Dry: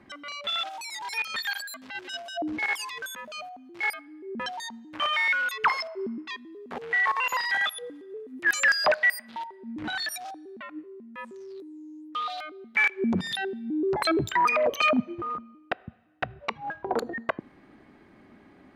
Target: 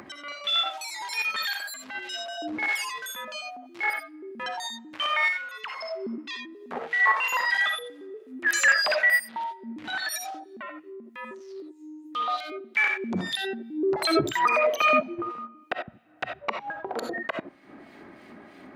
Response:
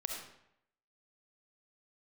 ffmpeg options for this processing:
-filter_complex "[0:a]acrossover=split=2200[s0][s1];[s0]aeval=exprs='val(0)*(1-0.7/2+0.7/2*cos(2*PI*3.1*n/s))':c=same[s2];[s1]aeval=exprs='val(0)*(1-0.7/2-0.7/2*cos(2*PI*3.1*n/s))':c=same[s3];[s2][s3]amix=inputs=2:normalize=0,asettb=1/sr,asplit=3[s4][s5][s6];[s4]atrim=end=5.284[s7];[s5]atrim=start=5.28:end=5.81,asetpts=PTS-STARTPTS,afade=t=in:d=0.004:c=qsin,afade=t=out:st=0.526:d=0.004:c=qsin,acompressor=threshold=0.0112:ratio=6[s8];[s6]atrim=start=5.806[s9];[s7][s8]acrossfade=d=0.004:c1=hsin:c2=qsin[s10];[s10][s9]acrossfade=d=0.004:c1=qsin:c2=hsin,asplit=3[s11][s12][s13];[s11]afade=t=out:st=12.04:d=0.02[s14];[s12]lowshelf=f=420:g=11.5,afade=t=in:st=12.04:d=0.02,afade=t=out:st=12.58:d=0.02[s15];[s13]afade=t=in:st=12.58:d=0.02[s16];[s14][s15][s16]amix=inputs=3:normalize=0[s17];[1:a]atrim=start_sample=2205,atrim=end_sample=4410[s18];[s17][s18]afir=irnorm=-1:irlink=0,acompressor=mode=upward:threshold=0.00794:ratio=2.5,highpass=f=210:p=1,volume=1.78"

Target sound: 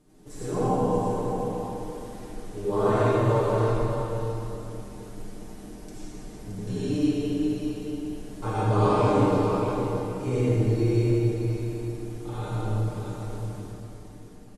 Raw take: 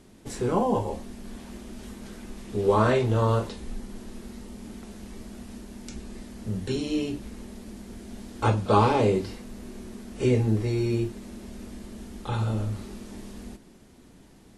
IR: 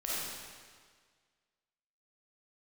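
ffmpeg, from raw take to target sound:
-filter_complex "[0:a]equalizer=f=2900:t=o:w=2.5:g=-6.5,aecho=1:1:6.6:0.65,aecho=1:1:622:0.398[s0];[1:a]atrim=start_sample=2205,asetrate=26019,aresample=44100[s1];[s0][s1]afir=irnorm=-1:irlink=0,volume=0.376"

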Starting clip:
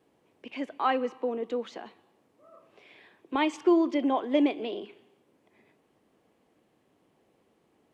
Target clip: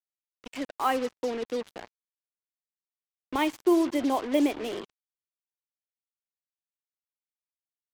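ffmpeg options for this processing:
-filter_complex "[0:a]asettb=1/sr,asplit=3[s0][s1][s2];[s0]atrim=end=1.714[s3];[s1]atrim=start=1.71:end=3.39,asetpts=PTS-STARTPTS,afade=t=in:d=0.004:c=qsin,afade=t=out:st=1.676:d=0.004:c=qsin,lowshelf=f=120:t=q:w=1.5:g=11[s4];[s2]atrim=start=3.386[s5];[s3][s4]acrossfade=d=0.004:c1=hsin:c2=qsin[s6];[s6][s5]acrossfade=d=0.004:c1=qsin:c2=hsin,acrusher=bits=5:mix=0:aa=0.5"

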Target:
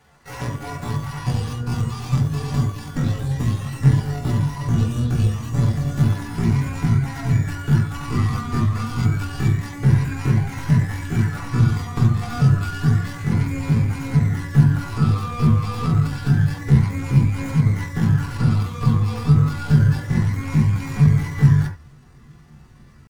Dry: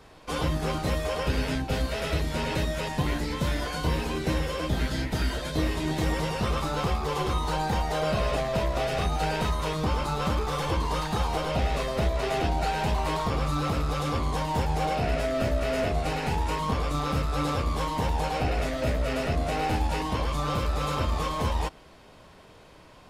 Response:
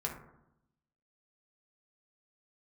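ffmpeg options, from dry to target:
-filter_complex "[0:a]aeval=exprs='0.224*(cos(1*acos(clip(val(0)/0.224,-1,1)))-cos(1*PI/2))+0.0447*(cos(2*acos(clip(val(0)/0.224,-1,1)))-cos(2*PI/2))+0.0355*(cos(3*acos(clip(val(0)/0.224,-1,1)))-cos(3*PI/2))+0.00251*(cos(4*acos(clip(val(0)/0.224,-1,1)))-cos(4*PI/2))+0.00141*(cos(6*acos(clip(val(0)/0.224,-1,1)))-cos(6*PI/2))':c=same,bandreject=f=279.4:t=h:w=4,bandreject=f=558.8:t=h:w=4,bandreject=f=838.2:t=h:w=4,bandreject=f=1117.6:t=h:w=4,bandreject=f=1397:t=h:w=4,bandreject=f=1676.4:t=h:w=4,bandreject=f=1955.8:t=h:w=4,bandreject=f=2235.2:t=h:w=4,bandreject=f=2514.6:t=h:w=4,bandreject=f=2794:t=h:w=4,bandreject=f=3073.4:t=h:w=4,bandreject=f=3352.8:t=h:w=4,bandreject=f=3632.2:t=h:w=4,bandreject=f=3911.6:t=h:w=4,bandreject=f=4191:t=h:w=4,bandreject=f=4470.4:t=h:w=4,bandreject=f=4749.8:t=h:w=4,bandreject=f=5029.2:t=h:w=4,bandreject=f=5308.6:t=h:w=4,bandreject=f=5588:t=h:w=4,bandreject=f=5867.4:t=h:w=4,bandreject=f=6146.8:t=h:w=4,bandreject=f=6426.2:t=h:w=4,bandreject=f=6705.6:t=h:w=4,bandreject=f=6985:t=h:w=4,bandreject=f=7264.4:t=h:w=4,bandreject=f=7543.8:t=h:w=4,bandreject=f=7823.2:t=h:w=4,bandreject=f=8102.6:t=h:w=4,bandreject=f=8382:t=h:w=4,bandreject=f=8661.4:t=h:w=4,bandreject=f=8940.8:t=h:w=4,bandreject=f=9220.2:t=h:w=4,bandreject=f=9499.6:t=h:w=4,bandreject=f=9779:t=h:w=4,bandreject=f=10058.4:t=h:w=4,bandreject=f=10337.8:t=h:w=4,bandreject=f=10617.2:t=h:w=4,asubboost=boost=6.5:cutoff=120,asetrate=80880,aresample=44100,atempo=0.545254[s0];[1:a]atrim=start_sample=2205,atrim=end_sample=3969,asetrate=43659,aresample=44100[s1];[s0][s1]afir=irnorm=-1:irlink=0"

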